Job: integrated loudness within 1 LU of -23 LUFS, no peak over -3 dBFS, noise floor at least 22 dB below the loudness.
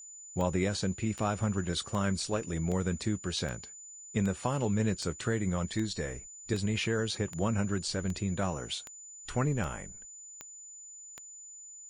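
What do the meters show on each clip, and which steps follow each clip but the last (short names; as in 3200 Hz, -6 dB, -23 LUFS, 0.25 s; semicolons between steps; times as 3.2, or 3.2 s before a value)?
clicks 15; steady tone 7000 Hz; tone level -46 dBFS; loudness -32.5 LUFS; peak -14.5 dBFS; loudness target -23.0 LUFS
-> de-click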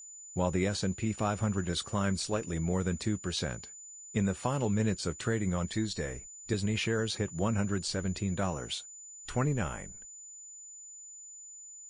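clicks 0; steady tone 7000 Hz; tone level -46 dBFS
-> notch 7000 Hz, Q 30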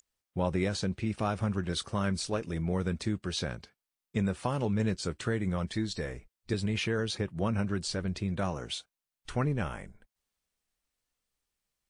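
steady tone none; loudness -32.5 LUFS; peak -15.0 dBFS; loudness target -23.0 LUFS
-> gain +9.5 dB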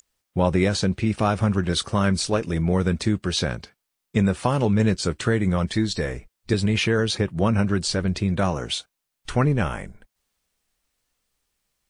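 loudness -23.0 LUFS; peak -5.5 dBFS; noise floor -80 dBFS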